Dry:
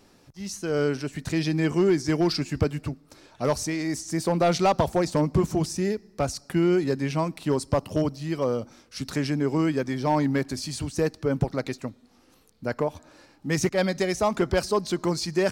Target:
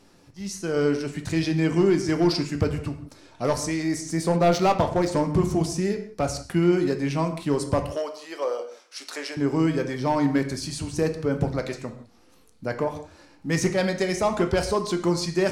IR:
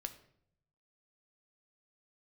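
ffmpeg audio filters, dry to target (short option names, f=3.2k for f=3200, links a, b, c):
-filter_complex "[0:a]asettb=1/sr,asplit=3[a][b][c];[a]atrim=end=7.834[d];[b]atrim=start=7.83:end=9.37,asetpts=PTS-STARTPTS,afade=t=in:d=0.004:c=qsin,afade=t=out:st=1.536:d=0.004:c=qsin,highpass=f=450:w=0.5412,highpass=f=450:w=1.3066[e];[c]atrim=start=9.366[f];[d][e]acrossfade=d=0.004:c1=hsin:c2=qsin[g];[g][f]acrossfade=d=0.004:c1=qsin:c2=hsin[h];[1:a]atrim=start_sample=2205,atrim=end_sample=4410,asetrate=23373,aresample=44100[i];[h][i]afir=irnorm=-1:irlink=0,asettb=1/sr,asplit=3[j][k][l];[j]atrim=end=4.364[m];[k]atrim=start=4.36:end=5.08,asetpts=PTS-STARTPTS,afade=t=in:d=0.004:c=qsin,afade=t=out:st=0.716:d=0.004:c=qsin,adynamicsmooth=sensitivity=7.5:basefreq=3.8k[n];[l]atrim=start=5.076[o];[m][n]acrossfade=d=0.004:c1=hsin:c2=qsin[p];[p][o]acrossfade=d=0.004:c1=qsin:c2=hsin"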